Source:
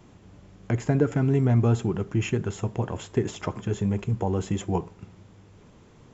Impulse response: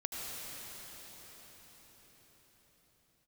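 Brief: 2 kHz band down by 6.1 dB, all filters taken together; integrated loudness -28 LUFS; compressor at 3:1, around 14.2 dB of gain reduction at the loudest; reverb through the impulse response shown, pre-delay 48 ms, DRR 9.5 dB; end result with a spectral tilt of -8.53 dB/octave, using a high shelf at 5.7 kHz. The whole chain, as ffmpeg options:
-filter_complex "[0:a]equalizer=f=2000:t=o:g=-7.5,highshelf=f=5700:g=-8.5,acompressor=threshold=0.0141:ratio=3,asplit=2[s0][s1];[1:a]atrim=start_sample=2205,adelay=48[s2];[s1][s2]afir=irnorm=-1:irlink=0,volume=0.237[s3];[s0][s3]amix=inputs=2:normalize=0,volume=3.35"

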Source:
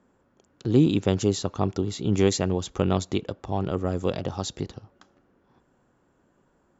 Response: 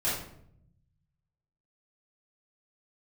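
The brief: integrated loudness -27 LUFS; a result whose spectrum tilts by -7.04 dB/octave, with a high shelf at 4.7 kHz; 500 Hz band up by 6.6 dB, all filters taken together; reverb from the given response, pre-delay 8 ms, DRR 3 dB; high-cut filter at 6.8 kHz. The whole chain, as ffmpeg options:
-filter_complex "[0:a]lowpass=6800,equalizer=f=500:t=o:g=8.5,highshelf=f=4700:g=6,asplit=2[s0][s1];[1:a]atrim=start_sample=2205,adelay=8[s2];[s1][s2]afir=irnorm=-1:irlink=0,volume=0.251[s3];[s0][s3]amix=inputs=2:normalize=0,volume=0.447"

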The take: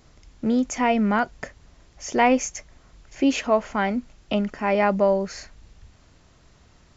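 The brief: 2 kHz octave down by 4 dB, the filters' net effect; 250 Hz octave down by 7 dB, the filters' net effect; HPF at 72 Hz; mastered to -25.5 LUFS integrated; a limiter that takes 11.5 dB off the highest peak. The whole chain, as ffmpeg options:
-af "highpass=72,equalizer=f=250:t=o:g=-8,equalizer=f=2000:t=o:g=-5,volume=1.88,alimiter=limit=0.2:level=0:latency=1"

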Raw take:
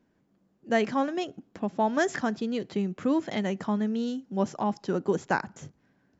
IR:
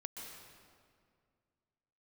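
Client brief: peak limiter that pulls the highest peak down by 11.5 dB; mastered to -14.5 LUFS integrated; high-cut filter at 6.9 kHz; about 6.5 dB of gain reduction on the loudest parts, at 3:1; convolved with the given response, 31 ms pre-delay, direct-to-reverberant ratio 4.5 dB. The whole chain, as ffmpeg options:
-filter_complex "[0:a]lowpass=6900,acompressor=threshold=0.0355:ratio=3,alimiter=level_in=1.88:limit=0.0631:level=0:latency=1,volume=0.531,asplit=2[s0][s1];[1:a]atrim=start_sample=2205,adelay=31[s2];[s1][s2]afir=irnorm=-1:irlink=0,volume=0.794[s3];[s0][s3]amix=inputs=2:normalize=0,volume=13.3"

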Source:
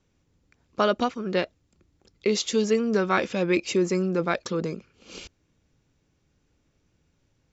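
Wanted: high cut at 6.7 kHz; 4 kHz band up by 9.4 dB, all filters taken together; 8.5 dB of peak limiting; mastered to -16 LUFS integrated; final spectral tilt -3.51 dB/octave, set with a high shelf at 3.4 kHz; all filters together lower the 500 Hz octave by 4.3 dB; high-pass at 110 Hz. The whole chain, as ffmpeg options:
-af "highpass=110,lowpass=6700,equalizer=f=500:t=o:g=-6,highshelf=f=3400:g=7.5,equalizer=f=4000:t=o:g=7,volume=3.76,alimiter=limit=0.794:level=0:latency=1"

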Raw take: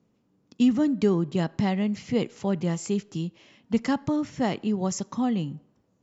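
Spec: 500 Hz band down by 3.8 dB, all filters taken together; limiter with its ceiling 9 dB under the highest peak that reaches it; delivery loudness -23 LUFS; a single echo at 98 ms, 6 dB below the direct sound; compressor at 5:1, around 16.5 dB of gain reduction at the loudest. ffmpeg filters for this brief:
-af "equalizer=f=500:t=o:g=-5,acompressor=threshold=0.0141:ratio=5,alimiter=level_in=2.99:limit=0.0631:level=0:latency=1,volume=0.335,aecho=1:1:98:0.501,volume=8.91"

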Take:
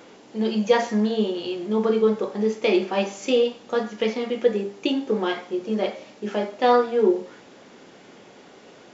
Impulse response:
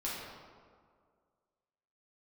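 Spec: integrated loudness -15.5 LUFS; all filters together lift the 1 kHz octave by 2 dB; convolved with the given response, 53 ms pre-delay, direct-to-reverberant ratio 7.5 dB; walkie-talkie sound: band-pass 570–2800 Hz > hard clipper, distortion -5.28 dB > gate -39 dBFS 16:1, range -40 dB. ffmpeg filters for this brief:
-filter_complex "[0:a]equalizer=f=1000:t=o:g=4,asplit=2[s0][s1];[1:a]atrim=start_sample=2205,adelay=53[s2];[s1][s2]afir=irnorm=-1:irlink=0,volume=0.282[s3];[s0][s3]amix=inputs=2:normalize=0,highpass=570,lowpass=2800,asoftclip=type=hard:threshold=0.0501,agate=range=0.01:threshold=0.0112:ratio=16,volume=5.96"

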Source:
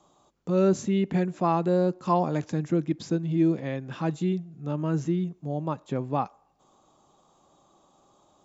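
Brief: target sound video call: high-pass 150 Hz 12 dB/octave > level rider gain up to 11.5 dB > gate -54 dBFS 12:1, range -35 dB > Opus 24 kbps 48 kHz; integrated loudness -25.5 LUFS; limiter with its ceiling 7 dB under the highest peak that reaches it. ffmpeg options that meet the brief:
-af "alimiter=limit=0.141:level=0:latency=1,highpass=150,dynaudnorm=m=3.76,agate=range=0.0178:threshold=0.002:ratio=12,volume=1.68" -ar 48000 -c:a libopus -b:a 24k

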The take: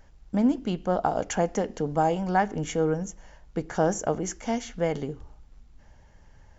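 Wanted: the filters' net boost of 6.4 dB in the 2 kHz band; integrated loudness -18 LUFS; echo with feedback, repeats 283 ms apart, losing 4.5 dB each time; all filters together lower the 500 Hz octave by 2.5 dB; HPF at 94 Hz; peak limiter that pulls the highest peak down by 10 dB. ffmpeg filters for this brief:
-af "highpass=94,equalizer=f=500:t=o:g=-3.5,equalizer=f=2000:t=o:g=8.5,alimiter=limit=0.133:level=0:latency=1,aecho=1:1:283|566|849|1132|1415|1698|1981|2264|2547:0.596|0.357|0.214|0.129|0.0772|0.0463|0.0278|0.0167|0.01,volume=3.35"

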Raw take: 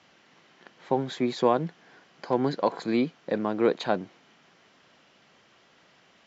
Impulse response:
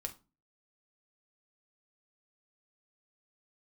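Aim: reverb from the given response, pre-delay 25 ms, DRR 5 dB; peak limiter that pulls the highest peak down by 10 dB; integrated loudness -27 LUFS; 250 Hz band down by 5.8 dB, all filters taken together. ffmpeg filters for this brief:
-filter_complex "[0:a]equalizer=f=250:t=o:g=-7.5,alimiter=limit=0.0944:level=0:latency=1,asplit=2[s0][s1];[1:a]atrim=start_sample=2205,adelay=25[s2];[s1][s2]afir=irnorm=-1:irlink=0,volume=0.668[s3];[s0][s3]amix=inputs=2:normalize=0,volume=2"

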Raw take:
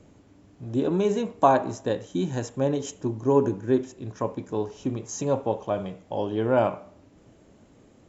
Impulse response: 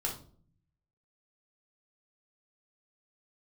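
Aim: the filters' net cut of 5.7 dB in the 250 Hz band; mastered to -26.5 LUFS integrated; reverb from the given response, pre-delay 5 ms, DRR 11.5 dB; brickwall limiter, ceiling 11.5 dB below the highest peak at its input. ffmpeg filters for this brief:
-filter_complex "[0:a]equalizer=f=250:t=o:g=-7.5,alimiter=limit=0.133:level=0:latency=1,asplit=2[s0][s1];[1:a]atrim=start_sample=2205,adelay=5[s2];[s1][s2]afir=irnorm=-1:irlink=0,volume=0.178[s3];[s0][s3]amix=inputs=2:normalize=0,volume=1.58"

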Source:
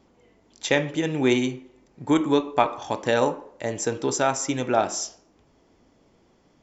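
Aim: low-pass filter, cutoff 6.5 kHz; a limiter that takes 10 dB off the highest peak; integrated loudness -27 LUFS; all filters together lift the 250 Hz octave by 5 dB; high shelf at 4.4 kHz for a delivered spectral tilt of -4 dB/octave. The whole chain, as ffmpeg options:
-af "lowpass=6500,equalizer=f=250:t=o:g=6,highshelf=f=4400:g=8.5,volume=0.841,alimiter=limit=0.168:level=0:latency=1"

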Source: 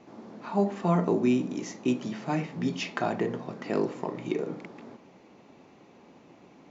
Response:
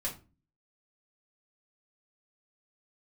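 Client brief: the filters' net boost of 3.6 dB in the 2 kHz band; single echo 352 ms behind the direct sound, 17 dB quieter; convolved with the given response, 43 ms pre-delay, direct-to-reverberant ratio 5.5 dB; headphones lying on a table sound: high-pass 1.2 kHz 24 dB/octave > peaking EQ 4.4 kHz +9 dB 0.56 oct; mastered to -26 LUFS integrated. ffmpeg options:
-filter_complex "[0:a]equalizer=f=2000:t=o:g=4,aecho=1:1:352:0.141,asplit=2[s0][s1];[1:a]atrim=start_sample=2205,adelay=43[s2];[s1][s2]afir=irnorm=-1:irlink=0,volume=0.398[s3];[s0][s3]amix=inputs=2:normalize=0,highpass=f=1200:w=0.5412,highpass=f=1200:w=1.3066,equalizer=f=4400:t=o:w=0.56:g=9,volume=3.76"

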